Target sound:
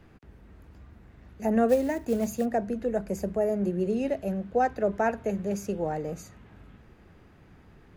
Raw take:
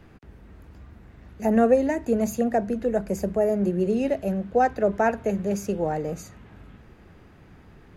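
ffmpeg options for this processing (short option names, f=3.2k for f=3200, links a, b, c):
-filter_complex "[0:a]asplit=3[a][b][c];[a]afade=t=out:st=1.68:d=0.02[d];[b]acrusher=bits=6:mode=log:mix=0:aa=0.000001,afade=t=in:st=1.68:d=0.02,afade=t=out:st=2.44:d=0.02[e];[c]afade=t=in:st=2.44:d=0.02[f];[d][e][f]amix=inputs=3:normalize=0,volume=-4dB"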